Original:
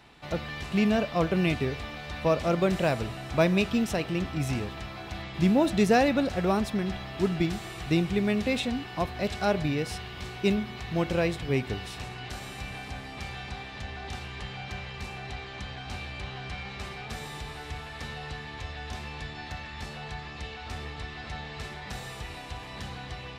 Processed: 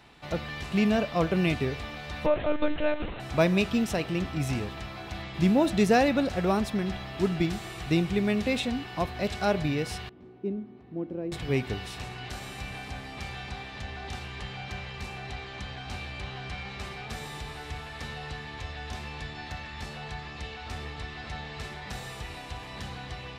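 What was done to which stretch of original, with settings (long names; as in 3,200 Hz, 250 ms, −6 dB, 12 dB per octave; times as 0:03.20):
0:02.26–0:03.20: one-pitch LPC vocoder at 8 kHz 300 Hz
0:10.09–0:11.32: resonant band-pass 290 Hz, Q 2.7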